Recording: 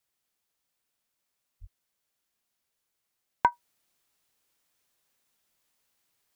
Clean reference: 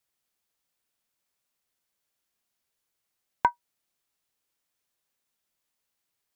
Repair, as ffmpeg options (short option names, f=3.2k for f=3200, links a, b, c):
-filter_complex "[0:a]asplit=3[a][b][c];[a]afade=t=out:st=1.6:d=0.02[d];[b]highpass=f=140:w=0.5412,highpass=f=140:w=1.3066,afade=t=in:st=1.6:d=0.02,afade=t=out:st=1.72:d=0.02[e];[c]afade=t=in:st=1.72:d=0.02[f];[d][e][f]amix=inputs=3:normalize=0,asetnsamples=n=441:p=0,asendcmd='3.52 volume volume -6dB',volume=0dB"